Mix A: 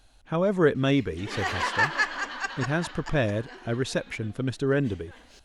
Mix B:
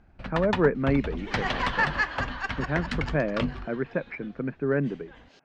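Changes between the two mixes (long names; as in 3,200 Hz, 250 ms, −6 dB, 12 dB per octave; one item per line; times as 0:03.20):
speech: add Chebyshev band-pass filter 140–2,400 Hz, order 5
first sound: unmuted
master: add high-frequency loss of the air 150 metres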